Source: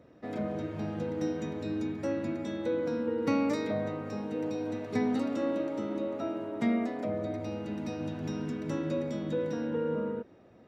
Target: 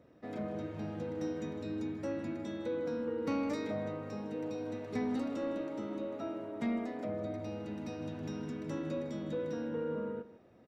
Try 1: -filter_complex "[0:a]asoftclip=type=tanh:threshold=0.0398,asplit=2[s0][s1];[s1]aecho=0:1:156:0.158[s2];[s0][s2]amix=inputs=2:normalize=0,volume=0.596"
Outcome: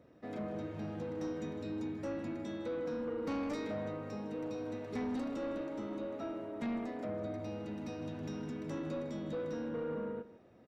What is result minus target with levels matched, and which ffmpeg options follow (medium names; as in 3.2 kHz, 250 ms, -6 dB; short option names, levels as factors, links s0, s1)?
saturation: distortion +9 dB
-filter_complex "[0:a]asoftclip=type=tanh:threshold=0.0891,asplit=2[s0][s1];[s1]aecho=0:1:156:0.158[s2];[s0][s2]amix=inputs=2:normalize=0,volume=0.596"